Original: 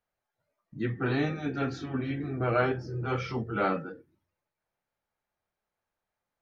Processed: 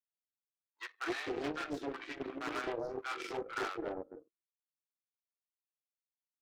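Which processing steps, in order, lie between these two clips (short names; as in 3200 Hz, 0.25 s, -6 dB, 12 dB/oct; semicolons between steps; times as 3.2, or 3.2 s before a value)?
steep high-pass 290 Hz 72 dB/oct; compressor 8:1, threshold -31 dBFS, peak gain reduction 11 dB; power-law curve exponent 2; hard clip -36.5 dBFS, distortion -9 dB; bands offset in time highs, lows 0.26 s, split 780 Hz; Doppler distortion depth 0.43 ms; gain +9 dB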